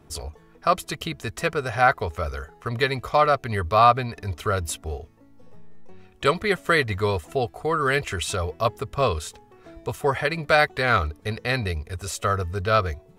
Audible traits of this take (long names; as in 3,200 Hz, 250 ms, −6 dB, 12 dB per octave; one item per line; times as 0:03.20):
background noise floor −54 dBFS
spectral slope −4.5 dB per octave